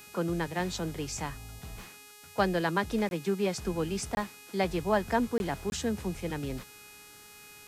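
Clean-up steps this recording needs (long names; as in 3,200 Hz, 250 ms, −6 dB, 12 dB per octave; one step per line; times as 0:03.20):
hum removal 416.4 Hz, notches 34
notch filter 2,500 Hz, Q 30
repair the gap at 0:03.09/0:04.15/0:05.38/0:05.70, 21 ms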